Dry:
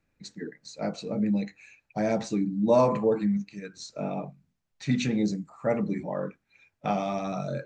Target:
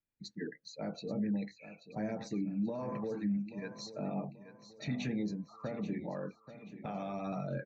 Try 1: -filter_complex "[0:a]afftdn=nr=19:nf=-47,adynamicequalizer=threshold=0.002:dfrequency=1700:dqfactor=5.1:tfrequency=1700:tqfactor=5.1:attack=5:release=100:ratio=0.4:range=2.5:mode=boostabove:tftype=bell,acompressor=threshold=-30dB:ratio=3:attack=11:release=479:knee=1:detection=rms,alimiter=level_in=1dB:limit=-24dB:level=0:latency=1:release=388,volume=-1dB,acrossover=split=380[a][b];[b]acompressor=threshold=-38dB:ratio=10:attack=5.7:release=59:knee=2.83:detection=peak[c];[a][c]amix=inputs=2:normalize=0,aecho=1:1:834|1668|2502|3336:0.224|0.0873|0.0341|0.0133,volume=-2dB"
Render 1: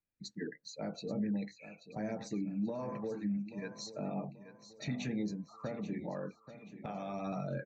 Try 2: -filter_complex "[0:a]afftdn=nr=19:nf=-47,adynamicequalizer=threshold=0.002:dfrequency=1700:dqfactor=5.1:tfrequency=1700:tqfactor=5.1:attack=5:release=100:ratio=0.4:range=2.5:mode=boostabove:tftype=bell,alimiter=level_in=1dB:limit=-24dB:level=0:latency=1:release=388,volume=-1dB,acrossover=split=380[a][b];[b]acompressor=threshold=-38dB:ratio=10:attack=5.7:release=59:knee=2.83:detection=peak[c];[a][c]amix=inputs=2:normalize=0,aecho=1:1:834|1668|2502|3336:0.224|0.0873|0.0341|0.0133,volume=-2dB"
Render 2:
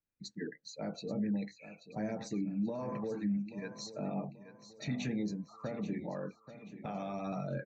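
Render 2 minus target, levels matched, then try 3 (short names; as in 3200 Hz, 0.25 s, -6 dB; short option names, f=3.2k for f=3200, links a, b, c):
8000 Hz band +3.5 dB
-filter_complex "[0:a]afftdn=nr=19:nf=-47,adynamicequalizer=threshold=0.002:dfrequency=1700:dqfactor=5.1:tfrequency=1700:tqfactor=5.1:attack=5:release=100:ratio=0.4:range=2.5:mode=boostabove:tftype=bell,lowpass=5.7k,alimiter=level_in=1dB:limit=-24dB:level=0:latency=1:release=388,volume=-1dB,acrossover=split=380[a][b];[b]acompressor=threshold=-38dB:ratio=10:attack=5.7:release=59:knee=2.83:detection=peak[c];[a][c]amix=inputs=2:normalize=0,aecho=1:1:834|1668|2502|3336:0.224|0.0873|0.0341|0.0133,volume=-2dB"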